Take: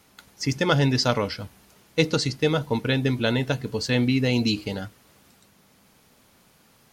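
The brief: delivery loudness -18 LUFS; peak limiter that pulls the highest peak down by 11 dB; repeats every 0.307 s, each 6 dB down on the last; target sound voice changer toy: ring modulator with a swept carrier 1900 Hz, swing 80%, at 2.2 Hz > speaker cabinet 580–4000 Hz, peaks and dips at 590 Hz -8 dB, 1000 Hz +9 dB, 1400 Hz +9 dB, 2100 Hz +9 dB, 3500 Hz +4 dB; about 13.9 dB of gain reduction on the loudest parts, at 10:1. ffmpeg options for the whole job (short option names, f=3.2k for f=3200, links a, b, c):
-af "acompressor=threshold=-30dB:ratio=10,alimiter=level_in=5dB:limit=-24dB:level=0:latency=1,volume=-5dB,aecho=1:1:307|614|921|1228|1535|1842:0.501|0.251|0.125|0.0626|0.0313|0.0157,aeval=exprs='val(0)*sin(2*PI*1900*n/s+1900*0.8/2.2*sin(2*PI*2.2*n/s))':c=same,highpass=580,equalizer=f=590:t=q:w=4:g=-8,equalizer=f=1k:t=q:w=4:g=9,equalizer=f=1.4k:t=q:w=4:g=9,equalizer=f=2.1k:t=q:w=4:g=9,equalizer=f=3.5k:t=q:w=4:g=4,lowpass=f=4k:w=0.5412,lowpass=f=4k:w=1.3066,volume=16dB"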